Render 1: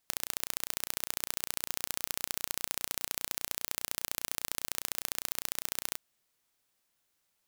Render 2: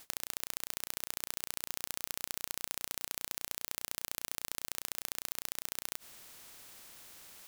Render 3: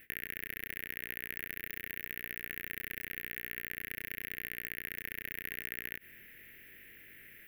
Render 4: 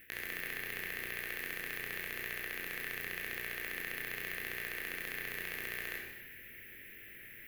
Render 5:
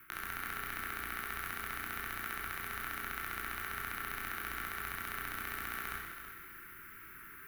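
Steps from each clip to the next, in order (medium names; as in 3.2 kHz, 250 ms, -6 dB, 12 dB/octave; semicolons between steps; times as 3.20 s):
spectrum-flattening compressor 4:1; trim -3 dB
FFT filter 420 Hz 0 dB, 720 Hz -17 dB, 1.1 kHz -25 dB, 1.8 kHz +10 dB, 2.7 kHz 0 dB, 4.3 kHz -24 dB, 8.2 kHz -29 dB, 12 kHz -4 dB; chorus 0.87 Hz, delay 18.5 ms, depth 5.9 ms; trim +6 dB
wavefolder -25 dBFS; reverberation RT60 1.1 s, pre-delay 21 ms, DRR -0.5 dB
frequency shift -420 Hz; bit-crushed delay 328 ms, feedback 35%, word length 10-bit, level -10 dB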